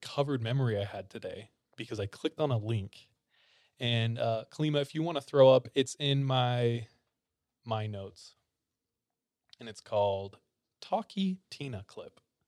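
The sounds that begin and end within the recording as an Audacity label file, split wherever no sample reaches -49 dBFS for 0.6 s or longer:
3.800000	6.860000	sound
7.660000	8.290000	sound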